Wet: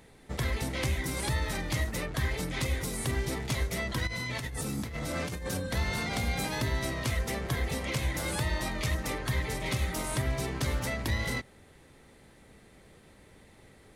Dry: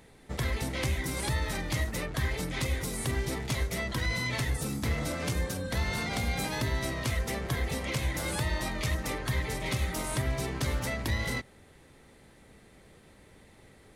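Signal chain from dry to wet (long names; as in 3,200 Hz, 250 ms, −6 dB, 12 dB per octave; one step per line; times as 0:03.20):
0:04.07–0:05.60: compressor whose output falls as the input rises −35 dBFS, ratio −1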